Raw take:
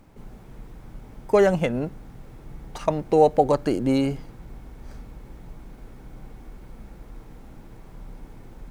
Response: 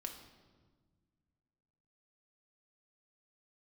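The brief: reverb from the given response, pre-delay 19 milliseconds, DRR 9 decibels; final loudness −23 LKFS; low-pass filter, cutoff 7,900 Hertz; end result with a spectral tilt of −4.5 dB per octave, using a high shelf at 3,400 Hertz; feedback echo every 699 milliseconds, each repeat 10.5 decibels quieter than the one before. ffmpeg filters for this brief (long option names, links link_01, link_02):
-filter_complex "[0:a]lowpass=7900,highshelf=frequency=3400:gain=5.5,aecho=1:1:699|1398|2097:0.299|0.0896|0.0269,asplit=2[link_01][link_02];[1:a]atrim=start_sample=2205,adelay=19[link_03];[link_02][link_03]afir=irnorm=-1:irlink=0,volume=-6.5dB[link_04];[link_01][link_04]amix=inputs=2:normalize=0,volume=-0.5dB"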